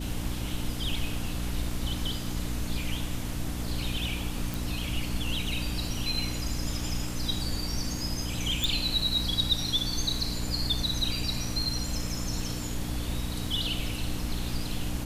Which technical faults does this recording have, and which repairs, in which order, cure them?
mains hum 60 Hz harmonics 5 −35 dBFS
0:04.54: click
0:08.64: click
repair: click removal
hum removal 60 Hz, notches 5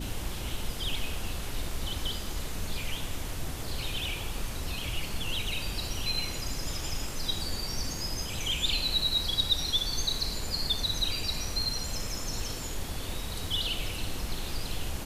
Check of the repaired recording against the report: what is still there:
none of them is left

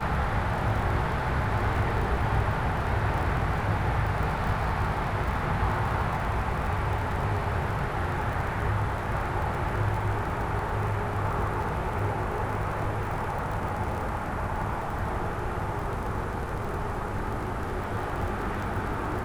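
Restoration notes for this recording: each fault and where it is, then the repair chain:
surface crackle 34 per second −33 dBFS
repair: click removal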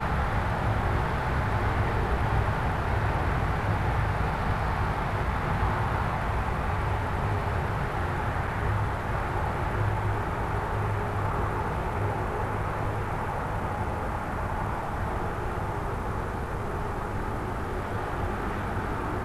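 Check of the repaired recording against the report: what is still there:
none of them is left

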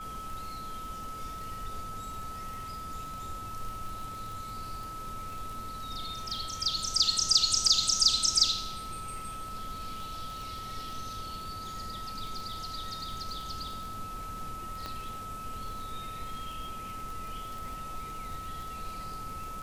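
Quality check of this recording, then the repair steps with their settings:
surface crackle 40 per second −38 dBFS
whistle 1,300 Hz −39 dBFS
0:14.86: click −23 dBFS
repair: click removal
notch filter 1,300 Hz, Q 30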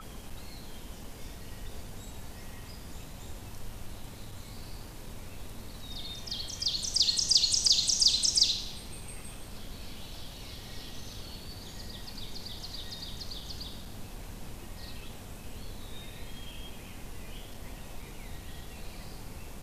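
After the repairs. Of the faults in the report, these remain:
0:14.86: click

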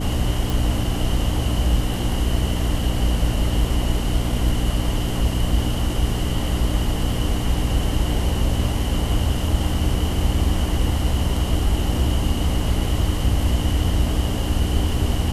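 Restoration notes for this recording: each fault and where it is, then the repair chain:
mains hum 60 Hz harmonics 5 −25 dBFS
0:00.50: click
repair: click removal
hum removal 60 Hz, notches 5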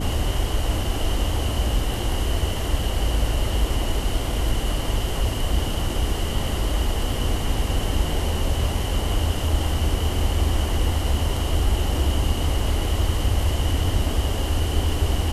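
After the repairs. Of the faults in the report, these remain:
none of them is left

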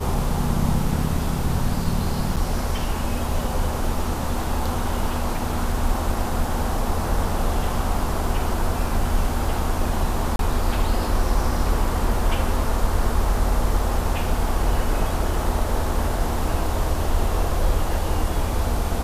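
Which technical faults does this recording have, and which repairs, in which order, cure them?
0:02.36–0:02.37: drop-out 7.4 ms
0:10.36–0:10.39: drop-out 32 ms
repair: repair the gap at 0:02.36, 7.4 ms
repair the gap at 0:10.36, 32 ms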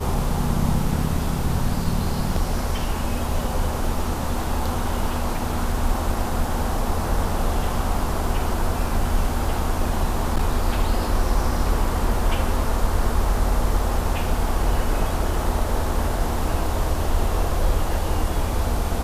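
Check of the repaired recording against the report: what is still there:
none of them is left

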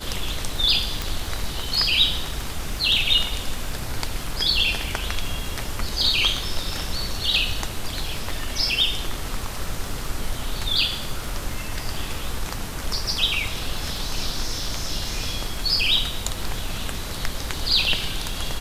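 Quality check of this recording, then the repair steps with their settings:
surface crackle 44 per second −32 dBFS
0:01.02: click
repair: click removal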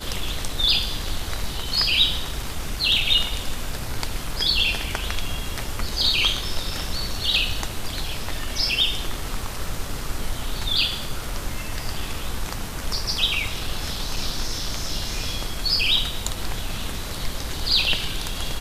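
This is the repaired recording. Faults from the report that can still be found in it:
none of them is left

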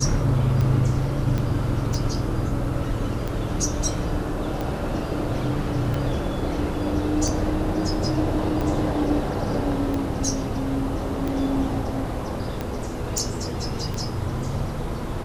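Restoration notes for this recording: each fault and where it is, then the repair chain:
scratch tick 45 rpm −15 dBFS
0:01.38: click −14 dBFS
0:13.18: click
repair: click removal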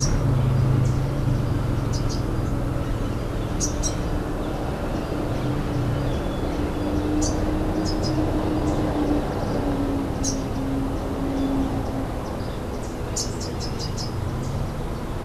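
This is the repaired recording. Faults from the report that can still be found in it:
0:01.38: click

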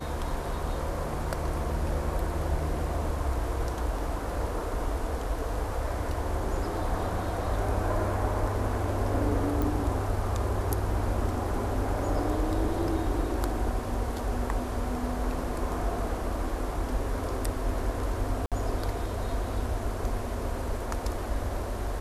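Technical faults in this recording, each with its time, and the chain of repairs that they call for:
0:09.62: click
0:18.46–0:18.52: drop-out 57 ms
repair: click removal
repair the gap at 0:18.46, 57 ms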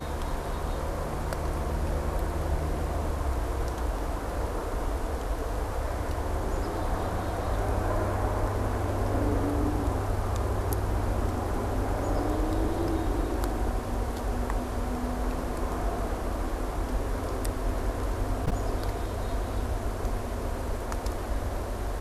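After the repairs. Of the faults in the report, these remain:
none of them is left

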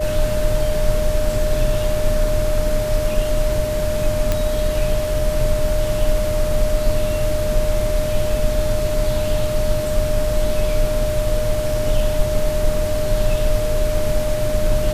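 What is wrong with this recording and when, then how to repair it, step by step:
whistle 610 Hz −21 dBFS
0:04.32: click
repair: click removal
notch filter 610 Hz, Q 30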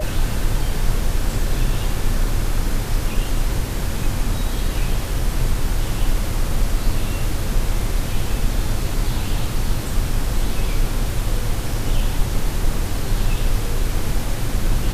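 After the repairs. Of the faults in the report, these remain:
none of them is left

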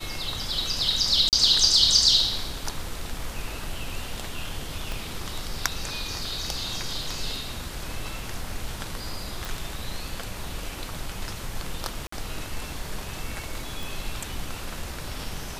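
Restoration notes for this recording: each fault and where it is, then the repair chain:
0:01.29–0:01.33: drop-out 38 ms
0:04.92: click
0:09.45: click
0:12.07–0:12.12: drop-out 54 ms
0:13.83: click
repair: click removal
repair the gap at 0:01.29, 38 ms
repair the gap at 0:12.07, 54 ms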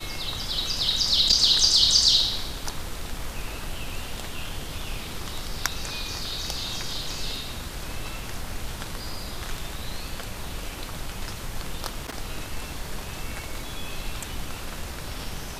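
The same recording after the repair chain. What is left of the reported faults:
0:04.92: click

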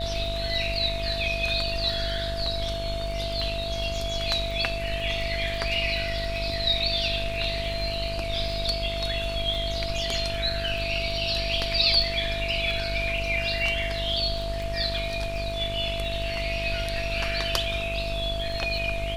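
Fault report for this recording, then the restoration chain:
mains buzz 50 Hz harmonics 33 −33 dBFS
surface crackle 23 per second −33 dBFS
whistle 670 Hz −31 dBFS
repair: click removal
hum removal 50 Hz, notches 33
notch filter 670 Hz, Q 30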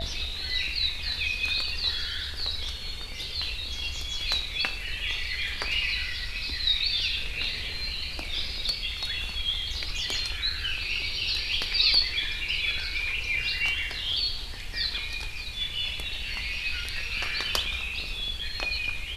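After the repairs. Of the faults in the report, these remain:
none of them is left

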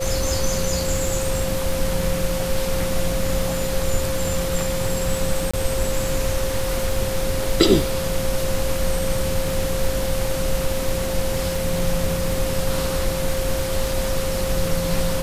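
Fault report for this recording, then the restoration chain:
surface crackle 45 per second −27 dBFS
whistle 530 Hz −25 dBFS
0:05.51–0:05.54: drop-out 25 ms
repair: click removal
notch filter 530 Hz, Q 30
repair the gap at 0:05.51, 25 ms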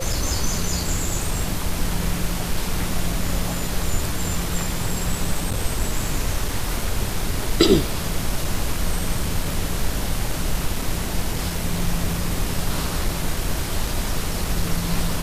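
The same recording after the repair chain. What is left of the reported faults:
none of them is left

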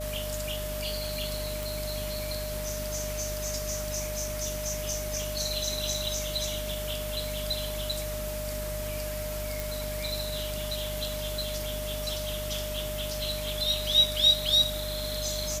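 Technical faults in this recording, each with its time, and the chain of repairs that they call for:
surface crackle 22 per second −40 dBFS
mains hum 50 Hz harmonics 5 −37 dBFS
whistle 610 Hz −35 dBFS
0:01.63: click
0:09.60: click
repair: click removal
hum removal 50 Hz, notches 5
notch filter 610 Hz, Q 30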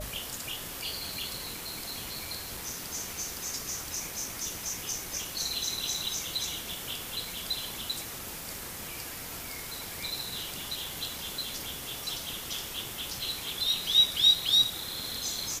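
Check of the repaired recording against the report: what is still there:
0:01.63: click

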